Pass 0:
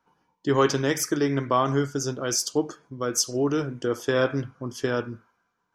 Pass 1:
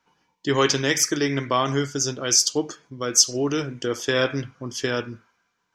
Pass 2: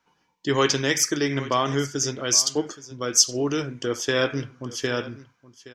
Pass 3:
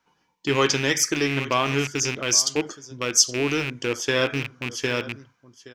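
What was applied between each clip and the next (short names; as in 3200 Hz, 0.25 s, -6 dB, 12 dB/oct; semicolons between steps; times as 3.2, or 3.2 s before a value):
band shelf 3700 Hz +8.5 dB 2.3 oct
echo 0.821 s -18 dB; gain -1 dB
rattling part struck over -33 dBFS, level -17 dBFS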